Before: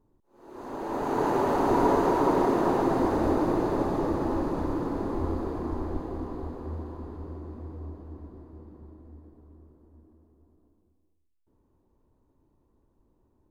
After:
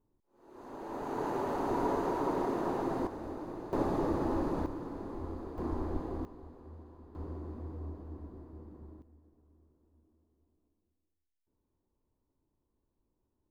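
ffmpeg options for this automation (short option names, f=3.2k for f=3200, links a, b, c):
-af "asetnsamples=n=441:p=0,asendcmd='3.07 volume volume -16.5dB;3.73 volume volume -4dB;4.66 volume volume -11dB;5.58 volume volume -3.5dB;6.25 volume volume -14.5dB;7.15 volume volume -2.5dB;9.02 volume volume -13dB',volume=-9dB"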